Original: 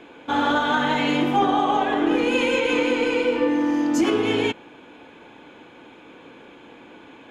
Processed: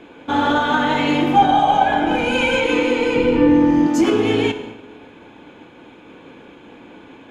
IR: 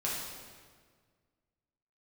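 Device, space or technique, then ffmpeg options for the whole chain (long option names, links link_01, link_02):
keyed gated reverb: -filter_complex "[0:a]lowshelf=frequency=300:gain=6.5,asettb=1/sr,asplit=3[link_01][link_02][link_03];[link_01]atrim=end=1.364[link_04];[link_02]atrim=start=1.36:end=2.64,asetpts=PTS-STARTPTS,afade=type=in:duration=0.004:curve=qsin,afade=type=out:start_time=1.276:duration=0.004:curve=qsin,aecho=1:1:1.3:0.75,atrim=end_sample=56448[link_05];[link_03]atrim=start=2.636[link_06];[link_04][link_05]acrossfade=duration=0.004:curve1=hsin:curve2=qsin[link_07];[link_07][link_06]acrossfade=duration=0.004:curve1=qsin:curve2=hsin,asplit=3[link_08][link_09][link_10];[1:a]atrim=start_sample=2205[link_11];[link_09][link_11]afir=irnorm=-1:irlink=0[link_12];[link_10]apad=whole_len=321945[link_13];[link_12][link_13]sidechaingate=range=-33dB:threshold=-42dB:ratio=16:detection=peak,volume=-12dB[link_14];[link_08][link_14]amix=inputs=2:normalize=0,asettb=1/sr,asplit=3[link_15][link_16][link_17];[link_15]atrim=end=3.164[link_18];[link_16]atrim=start=3.16:end=3.87,asetpts=PTS-STARTPTS,afade=type=in:duration=0.004:curve=qsin,afade=type=out:start_time=0.706:duration=0.004:curve=qsin,bass=frequency=250:gain=14,treble=frequency=4000:gain=-4[link_19];[link_17]atrim=start=3.866[link_20];[link_18][link_19]acrossfade=duration=0.004:curve1=hsin:curve2=qsin[link_21];[link_21][link_20]acrossfade=duration=0.004:curve1=qsin:curve2=hsin"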